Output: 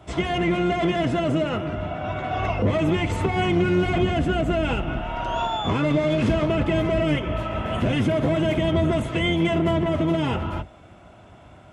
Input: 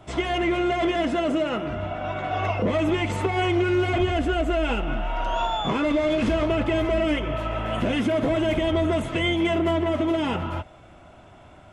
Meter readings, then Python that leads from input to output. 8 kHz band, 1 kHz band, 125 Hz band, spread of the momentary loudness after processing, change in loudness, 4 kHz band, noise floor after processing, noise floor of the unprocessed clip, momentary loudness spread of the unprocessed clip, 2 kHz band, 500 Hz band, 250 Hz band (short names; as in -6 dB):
0.0 dB, 0.0 dB, +5.0 dB, 7 LU, +1.0 dB, 0.0 dB, -48 dBFS, -49 dBFS, 6 LU, 0.0 dB, 0.0 dB, +1.5 dB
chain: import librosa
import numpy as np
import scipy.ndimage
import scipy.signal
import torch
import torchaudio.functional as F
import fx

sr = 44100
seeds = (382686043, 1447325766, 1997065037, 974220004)

y = fx.octave_divider(x, sr, octaves=1, level_db=1.0)
y = scipy.signal.sosfilt(scipy.signal.butter(2, 55.0, 'highpass', fs=sr, output='sos'), y)